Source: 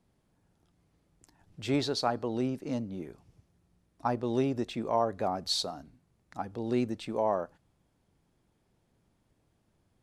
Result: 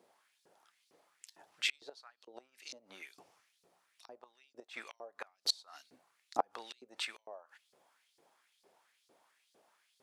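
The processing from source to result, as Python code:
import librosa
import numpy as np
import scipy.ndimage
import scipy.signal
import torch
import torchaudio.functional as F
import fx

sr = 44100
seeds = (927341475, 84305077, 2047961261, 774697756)

y = fx.gate_flip(x, sr, shuts_db=-22.0, range_db=-30)
y = fx.filter_lfo_highpass(y, sr, shape='saw_up', hz=2.2, low_hz=380.0, high_hz=4900.0, q=2.4)
y = F.gain(torch.from_numpy(y), 5.5).numpy()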